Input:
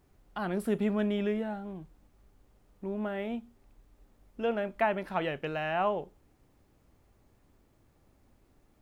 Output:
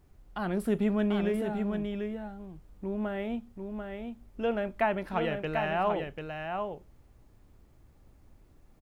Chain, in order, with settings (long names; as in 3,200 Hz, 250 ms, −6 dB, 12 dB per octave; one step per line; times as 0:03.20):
low-shelf EQ 110 Hz +9 dB
single-tap delay 741 ms −5.5 dB